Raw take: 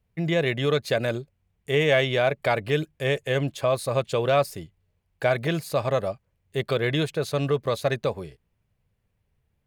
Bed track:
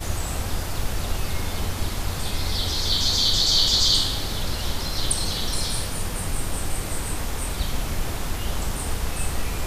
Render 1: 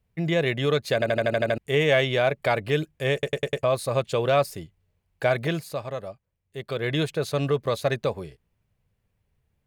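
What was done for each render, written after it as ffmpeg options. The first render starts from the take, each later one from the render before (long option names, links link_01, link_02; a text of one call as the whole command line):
ffmpeg -i in.wav -filter_complex "[0:a]asplit=16[link_01][link_02][link_03][link_04][link_05][link_06][link_07][link_08][link_09][link_10][link_11][link_12][link_13][link_14][link_15][link_16];[link_01]atrim=end=1.022[link_17];[link_02]atrim=start=0.938:end=1.022[link_18];[link_03]atrim=start=0.938:end=1.022[link_19];[link_04]atrim=start=0.938:end=1.022[link_20];[link_05]atrim=start=0.938:end=1.022[link_21];[link_06]atrim=start=0.938:end=1.022[link_22];[link_07]atrim=start=0.938:end=1.022[link_23];[link_08]atrim=start=0.938:end=1.022[link_24];[link_09]atrim=start=1.578:end=3.232[link_25];[link_10]atrim=start=3.128:end=3.232[link_26];[link_11]atrim=start=3.128:end=3.232[link_27];[link_12]atrim=start=3.128:end=3.232[link_28];[link_13]atrim=start=3.128:end=3.232[link_29];[link_14]atrim=start=3.628:end=5.83,asetpts=PTS-STARTPTS,afade=type=out:start_time=1.822:duration=0.38:silence=0.375837[link_30];[link_15]atrim=start=5.83:end=6.63,asetpts=PTS-STARTPTS,volume=-8.5dB[link_31];[link_16]atrim=start=6.63,asetpts=PTS-STARTPTS,afade=type=in:duration=0.38:silence=0.375837[link_32];[link_17][link_18]acrossfade=duration=0.004:curve1=hsin:curve2=hsin[link_33];[link_33][link_19]acrossfade=duration=0.004:curve1=hsin:curve2=hsin[link_34];[link_34][link_20]acrossfade=duration=0.004:curve1=hsin:curve2=hsin[link_35];[link_35][link_21]acrossfade=duration=0.004:curve1=hsin:curve2=hsin[link_36];[link_36][link_22]acrossfade=duration=0.004:curve1=hsin:curve2=hsin[link_37];[link_37][link_23]acrossfade=duration=0.004:curve1=hsin:curve2=hsin[link_38];[link_38][link_24]acrossfade=duration=0.004:curve1=hsin:curve2=hsin[link_39];[link_39][link_25]acrossfade=duration=0.004:curve1=hsin:curve2=hsin[link_40];[link_40][link_26]acrossfade=duration=0.004:curve1=hsin:curve2=hsin[link_41];[link_41][link_27]acrossfade=duration=0.004:curve1=hsin:curve2=hsin[link_42];[link_42][link_28]acrossfade=duration=0.004:curve1=hsin:curve2=hsin[link_43];[link_43][link_29]acrossfade=duration=0.004:curve1=hsin:curve2=hsin[link_44];[link_30][link_31][link_32]concat=n=3:v=0:a=1[link_45];[link_44][link_45]acrossfade=duration=0.004:curve1=hsin:curve2=hsin" out.wav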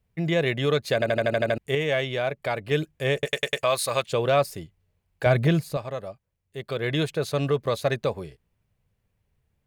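ffmpeg -i in.wav -filter_complex "[0:a]asettb=1/sr,asplit=3[link_01][link_02][link_03];[link_01]atrim=end=3.254[link_04];[link_02]atrim=start=3.25:end=4.09,asetpts=PTS-STARTPTS,afade=type=in:duration=0.004:curve=qsin,afade=type=out:start_time=0.836:duration=0.004:curve=qsin,tiltshelf=frequency=710:gain=-8.5[link_05];[link_03]atrim=start=4.086[link_06];[link_04][link_05]acrossfade=duration=0.004:curve1=hsin:curve2=qsin[link_07];[link_07][link_06]acrossfade=duration=0.004:curve1=qsin:curve2=hsin,asettb=1/sr,asplit=3[link_08][link_09][link_10];[link_08]atrim=end=5.264[link_11];[link_09]atrim=start=5.26:end=5.77,asetpts=PTS-STARTPTS,afade=type=in:duration=0.004:curve=qsin,afade=type=out:start_time=0.506:duration=0.004:curve=qsin,lowshelf=frequency=230:gain=12[link_12];[link_10]atrim=start=5.766[link_13];[link_11][link_12]acrossfade=duration=0.004:curve1=hsin:curve2=qsin[link_14];[link_14][link_13]acrossfade=duration=0.004:curve1=qsin:curve2=hsin,asplit=3[link_15][link_16][link_17];[link_15]atrim=end=1.752[link_18];[link_16]atrim=start=1.748:end=2.712,asetpts=PTS-STARTPTS,volume=-4.5dB[link_19];[link_17]atrim=start=2.708[link_20];[link_18][link_19]acrossfade=duration=0.004:curve1=hsin:curve2=hsin[link_21];[link_21][link_20]acrossfade=duration=0.004:curve1=hsin:curve2=hsin" out.wav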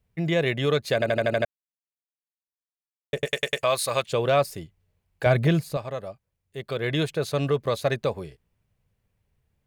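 ffmpeg -i in.wav -filter_complex "[0:a]asplit=3[link_01][link_02][link_03];[link_01]atrim=end=1.45,asetpts=PTS-STARTPTS,afade=type=out:start_time=1.446:duration=0.004:curve=hsin[link_04];[link_02]atrim=start=1.45:end=3.13,asetpts=PTS-STARTPTS,volume=0[link_05];[link_03]atrim=start=3.13,asetpts=PTS-STARTPTS,afade=type=in:duration=0.004:curve=hsin[link_06];[link_04][link_05][link_06]concat=n=3:v=0:a=1" out.wav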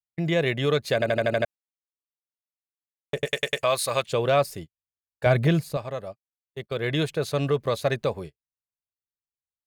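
ffmpeg -i in.wav -af "agate=range=-39dB:threshold=-36dB:ratio=16:detection=peak" out.wav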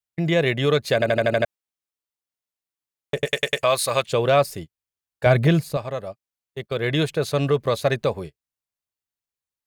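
ffmpeg -i in.wav -af "volume=3.5dB" out.wav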